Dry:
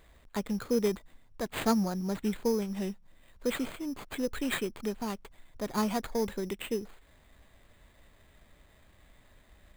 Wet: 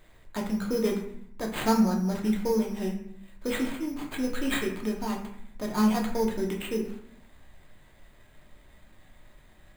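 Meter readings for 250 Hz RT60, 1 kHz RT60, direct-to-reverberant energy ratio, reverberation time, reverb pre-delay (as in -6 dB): 0.90 s, 0.70 s, -0.5 dB, 0.70 s, 3 ms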